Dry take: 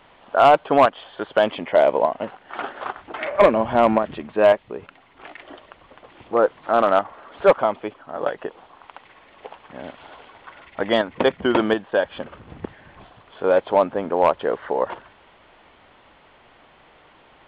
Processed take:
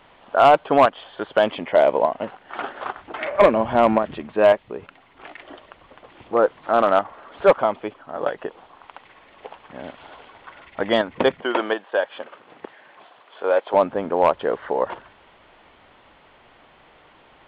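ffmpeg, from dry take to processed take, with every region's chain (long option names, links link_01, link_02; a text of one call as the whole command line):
ffmpeg -i in.wav -filter_complex "[0:a]asettb=1/sr,asplit=3[link_01][link_02][link_03];[link_01]atrim=end=11.404[link_04];[link_02]atrim=start=11.4:end=13.74,asetpts=PTS-STARTPTS,afade=type=in:duration=0.004:curve=qsin,afade=type=out:start_time=2.336:duration=0.004:curve=qsin,acrossover=split=4200[link_05][link_06];[link_06]acompressor=threshold=-56dB:ratio=4:attack=1:release=60[link_07];[link_05][link_07]amix=inputs=2:normalize=0,highpass=450[link_08];[link_03]atrim=start=13.736[link_09];[link_04][link_08]acrossfade=duration=0.004:curve1=hsin:curve2=qsin[link_10];[link_10][link_09]acrossfade=duration=0.004:curve1=qsin:curve2=hsin" out.wav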